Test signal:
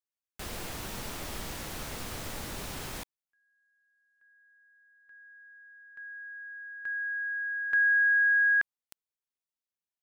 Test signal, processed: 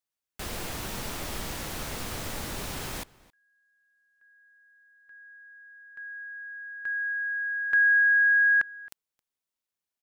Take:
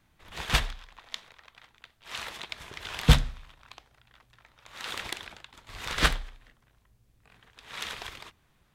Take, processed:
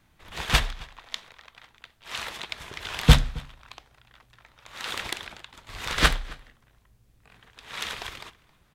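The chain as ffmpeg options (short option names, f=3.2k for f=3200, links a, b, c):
-filter_complex "[0:a]asplit=2[a][b];[b]adelay=268.2,volume=-22dB,highshelf=f=4k:g=-6.04[c];[a][c]amix=inputs=2:normalize=0,volume=3.5dB"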